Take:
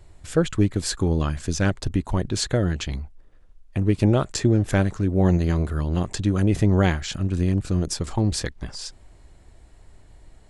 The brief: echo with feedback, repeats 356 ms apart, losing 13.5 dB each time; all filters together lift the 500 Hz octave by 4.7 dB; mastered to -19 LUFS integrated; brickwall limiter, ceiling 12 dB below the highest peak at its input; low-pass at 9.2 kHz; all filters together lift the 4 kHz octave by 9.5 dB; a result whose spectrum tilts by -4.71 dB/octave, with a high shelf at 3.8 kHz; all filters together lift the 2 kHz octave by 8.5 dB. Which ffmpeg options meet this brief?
-af "lowpass=9200,equalizer=f=500:t=o:g=5.5,equalizer=f=2000:t=o:g=8,highshelf=f=3800:g=6.5,equalizer=f=4000:t=o:g=5.5,alimiter=limit=0.224:level=0:latency=1,aecho=1:1:356|712:0.211|0.0444,volume=1.78"

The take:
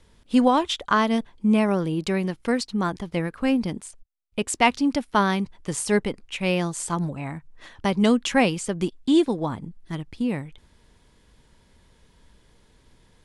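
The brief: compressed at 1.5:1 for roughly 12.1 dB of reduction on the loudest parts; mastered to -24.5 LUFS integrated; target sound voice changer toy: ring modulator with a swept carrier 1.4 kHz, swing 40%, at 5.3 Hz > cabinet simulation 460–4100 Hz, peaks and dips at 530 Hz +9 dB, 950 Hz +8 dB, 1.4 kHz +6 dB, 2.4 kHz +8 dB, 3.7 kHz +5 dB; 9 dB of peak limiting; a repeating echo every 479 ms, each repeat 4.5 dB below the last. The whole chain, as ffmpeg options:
-af "acompressor=threshold=0.00355:ratio=1.5,alimiter=level_in=1.26:limit=0.0631:level=0:latency=1,volume=0.794,aecho=1:1:479|958|1437|1916|2395|2874|3353|3832|4311:0.596|0.357|0.214|0.129|0.0772|0.0463|0.0278|0.0167|0.01,aeval=exprs='val(0)*sin(2*PI*1400*n/s+1400*0.4/5.3*sin(2*PI*5.3*n/s))':c=same,highpass=460,equalizer=f=530:t=q:w=4:g=9,equalizer=f=950:t=q:w=4:g=8,equalizer=f=1400:t=q:w=4:g=6,equalizer=f=2400:t=q:w=4:g=8,equalizer=f=3700:t=q:w=4:g=5,lowpass=f=4100:w=0.5412,lowpass=f=4100:w=1.3066,volume=2.37"

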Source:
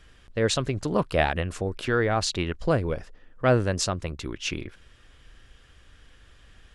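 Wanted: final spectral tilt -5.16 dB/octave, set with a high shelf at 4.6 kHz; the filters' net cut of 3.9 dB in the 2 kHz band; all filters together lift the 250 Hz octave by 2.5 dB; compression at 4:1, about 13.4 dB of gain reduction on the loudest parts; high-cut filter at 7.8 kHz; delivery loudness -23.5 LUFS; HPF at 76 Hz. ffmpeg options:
-af "highpass=76,lowpass=7800,equalizer=f=250:t=o:g=3.5,equalizer=f=2000:t=o:g=-4,highshelf=f=4600:g=-7,acompressor=threshold=0.0251:ratio=4,volume=4.47"

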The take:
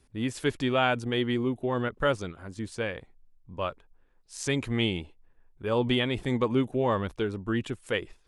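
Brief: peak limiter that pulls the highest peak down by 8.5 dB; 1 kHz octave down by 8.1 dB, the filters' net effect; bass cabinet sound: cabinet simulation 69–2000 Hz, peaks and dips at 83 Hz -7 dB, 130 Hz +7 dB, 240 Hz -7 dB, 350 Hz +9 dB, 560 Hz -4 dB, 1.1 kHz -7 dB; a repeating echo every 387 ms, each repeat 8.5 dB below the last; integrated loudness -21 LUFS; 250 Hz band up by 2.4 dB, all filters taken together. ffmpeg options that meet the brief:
-af "equalizer=f=250:t=o:g=3.5,equalizer=f=1000:t=o:g=-8.5,alimiter=limit=0.0944:level=0:latency=1,highpass=f=69:w=0.5412,highpass=f=69:w=1.3066,equalizer=f=83:t=q:w=4:g=-7,equalizer=f=130:t=q:w=4:g=7,equalizer=f=240:t=q:w=4:g=-7,equalizer=f=350:t=q:w=4:g=9,equalizer=f=560:t=q:w=4:g=-4,equalizer=f=1100:t=q:w=4:g=-7,lowpass=f=2000:w=0.5412,lowpass=f=2000:w=1.3066,aecho=1:1:387|774|1161|1548:0.376|0.143|0.0543|0.0206,volume=2.82"

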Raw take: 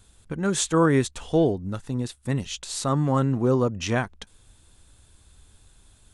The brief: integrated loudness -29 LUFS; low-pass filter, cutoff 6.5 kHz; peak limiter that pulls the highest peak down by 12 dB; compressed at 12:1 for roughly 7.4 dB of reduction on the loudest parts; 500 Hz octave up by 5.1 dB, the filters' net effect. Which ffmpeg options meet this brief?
-af "lowpass=6500,equalizer=f=500:t=o:g=6,acompressor=threshold=0.112:ratio=12,volume=1.58,alimiter=limit=0.106:level=0:latency=1"

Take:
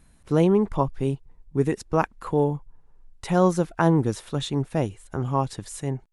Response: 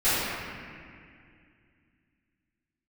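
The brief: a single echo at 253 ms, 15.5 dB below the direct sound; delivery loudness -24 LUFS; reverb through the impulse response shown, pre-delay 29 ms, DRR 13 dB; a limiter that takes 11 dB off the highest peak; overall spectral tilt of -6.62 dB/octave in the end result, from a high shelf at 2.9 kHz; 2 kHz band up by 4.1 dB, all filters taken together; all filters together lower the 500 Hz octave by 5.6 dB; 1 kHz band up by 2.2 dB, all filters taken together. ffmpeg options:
-filter_complex "[0:a]equalizer=f=500:t=o:g=-8.5,equalizer=f=1000:t=o:g=4.5,equalizer=f=2000:t=o:g=7,highshelf=f=2900:g=-7.5,alimiter=limit=0.133:level=0:latency=1,aecho=1:1:253:0.168,asplit=2[s0][s1];[1:a]atrim=start_sample=2205,adelay=29[s2];[s1][s2]afir=irnorm=-1:irlink=0,volume=0.0316[s3];[s0][s3]amix=inputs=2:normalize=0,volume=2"

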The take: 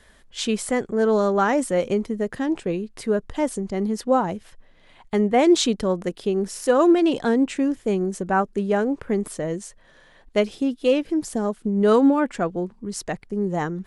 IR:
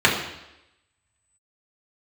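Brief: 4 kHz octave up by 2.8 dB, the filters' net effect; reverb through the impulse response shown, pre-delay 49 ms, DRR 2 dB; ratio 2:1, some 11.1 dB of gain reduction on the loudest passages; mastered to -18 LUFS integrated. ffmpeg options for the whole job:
-filter_complex "[0:a]equalizer=f=4000:t=o:g=3.5,acompressor=threshold=0.0224:ratio=2,asplit=2[s0][s1];[1:a]atrim=start_sample=2205,adelay=49[s2];[s1][s2]afir=irnorm=-1:irlink=0,volume=0.0668[s3];[s0][s3]amix=inputs=2:normalize=0,volume=3.55"

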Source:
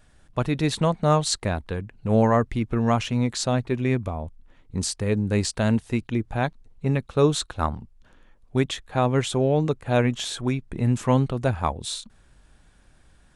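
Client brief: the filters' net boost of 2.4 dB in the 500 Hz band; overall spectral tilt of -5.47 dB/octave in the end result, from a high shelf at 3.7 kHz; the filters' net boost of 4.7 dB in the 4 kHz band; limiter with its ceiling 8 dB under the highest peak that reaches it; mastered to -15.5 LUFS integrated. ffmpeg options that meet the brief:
-af "equalizer=f=500:t=o:g=3,highshelf=f=3700:g=-6,equalizer=f=4000:t=o:g=9,volume=3.16,alimiter=limit=0.708:level=0:latency=1"

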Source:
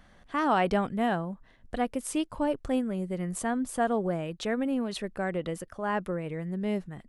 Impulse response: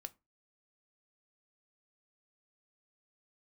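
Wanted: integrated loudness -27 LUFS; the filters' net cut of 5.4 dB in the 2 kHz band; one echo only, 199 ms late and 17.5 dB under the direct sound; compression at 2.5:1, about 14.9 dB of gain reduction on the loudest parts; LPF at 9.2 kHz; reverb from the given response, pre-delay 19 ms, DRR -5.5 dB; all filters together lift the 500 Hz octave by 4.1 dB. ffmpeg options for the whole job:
-filter_complex "[0:a]lowpass=9200,equalizer=f=500:t=o:g=5.5,equalizer=f=2000:t=o:g=-7.5,acompressor=threshold=0.00708:ratio=2.5,aecho=1:1:199:0.133,asplit=2[s0][s1];[1:a]atrim=start_sample=2205,adelay=19[s2];[s1][s2]afir=irnorm=-1:irlink=0,volume=3.35[s3];[s0][s3]amix=inputs=2:normalize=0,volume=2.37"

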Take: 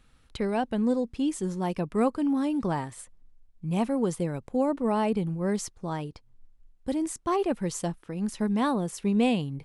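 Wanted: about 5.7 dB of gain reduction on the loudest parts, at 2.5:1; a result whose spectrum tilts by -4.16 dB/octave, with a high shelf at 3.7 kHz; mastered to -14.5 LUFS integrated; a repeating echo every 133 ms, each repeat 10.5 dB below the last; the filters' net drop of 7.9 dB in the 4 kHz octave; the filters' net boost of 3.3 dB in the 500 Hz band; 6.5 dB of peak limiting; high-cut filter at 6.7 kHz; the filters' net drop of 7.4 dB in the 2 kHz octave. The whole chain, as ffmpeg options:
-af "lowpass=6700,equalizer=f=500:t=o:g=4.5,equalizer=f=2000:t=o:g=-8,highshelf=f=3700:g=-5.5,equalizer=f=4000:t=o:g=-3.5,acompressor=threshold=0.0501:ratio=2.5,alimiter=limit=0.0631:level=0:latency=1,aecho=1:1:133|266|399:0.299|0.0896|0.0269,volume=7.94"

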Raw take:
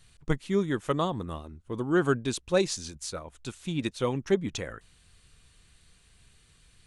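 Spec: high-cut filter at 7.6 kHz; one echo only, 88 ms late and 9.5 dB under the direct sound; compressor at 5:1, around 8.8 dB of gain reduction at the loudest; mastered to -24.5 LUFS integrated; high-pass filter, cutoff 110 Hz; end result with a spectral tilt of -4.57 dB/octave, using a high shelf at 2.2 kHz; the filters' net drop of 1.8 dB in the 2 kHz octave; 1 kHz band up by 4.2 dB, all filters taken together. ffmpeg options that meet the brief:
-af "highpass=110,lowpass=7600,equalizer=f=1000:t=o:g=7,equalizer=f=2000:t=o:g=-8.5,highshelf=f=2200:g=4.5,acompressor=threshold=0.0398:ratio=5,aecho=1:1:88:0.335,volume=3.16"

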